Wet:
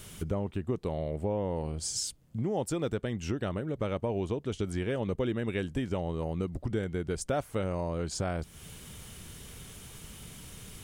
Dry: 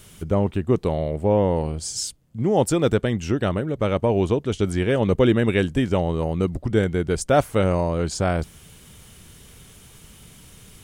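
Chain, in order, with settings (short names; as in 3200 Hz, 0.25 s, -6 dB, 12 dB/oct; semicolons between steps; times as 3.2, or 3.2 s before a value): compressor 3:1, threshold -32 dBFS, peak gain reduction 14.5 dB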